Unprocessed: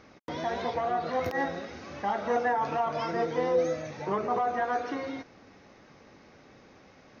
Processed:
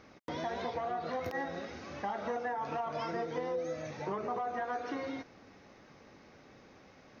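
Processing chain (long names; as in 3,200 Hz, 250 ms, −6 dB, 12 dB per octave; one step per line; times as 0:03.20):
downward compressor, threshold −30 dBFS, peak gain reduction 9 dB
level −2.5 dB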